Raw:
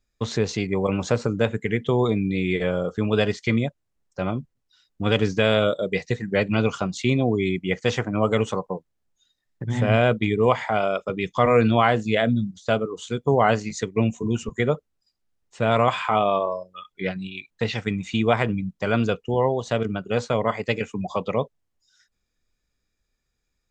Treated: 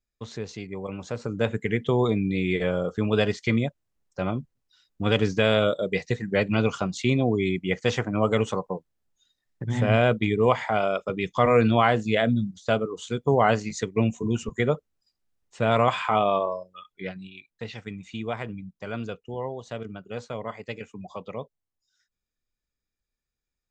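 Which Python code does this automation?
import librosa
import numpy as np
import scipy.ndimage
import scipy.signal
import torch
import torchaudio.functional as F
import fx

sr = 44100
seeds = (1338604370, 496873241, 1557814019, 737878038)

y = fx.gain(x, sr, db=fx.line((1.1, -11.0), (1.5, -1.5), (16.41, -1.5), (17.52, -11.0)))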